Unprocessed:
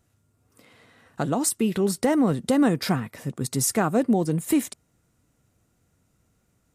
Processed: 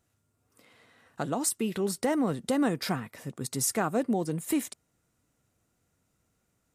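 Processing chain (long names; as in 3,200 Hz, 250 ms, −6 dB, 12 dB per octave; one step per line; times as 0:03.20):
low-shelf EQ 280 Hz −5.5 dB
level −4 dB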